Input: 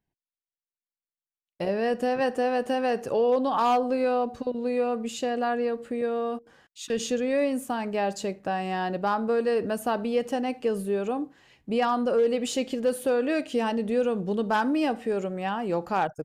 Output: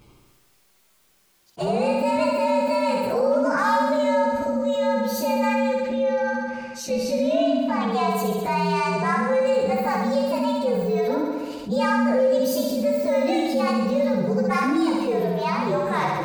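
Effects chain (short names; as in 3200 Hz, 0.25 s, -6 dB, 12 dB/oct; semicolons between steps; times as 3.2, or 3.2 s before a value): inharmonic rescaling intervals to 119%; 5.79–7.91 LPF 5700 Hz 12 dB/oct; flutter echo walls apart 11.5 m, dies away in 1 s; fast leveller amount 50%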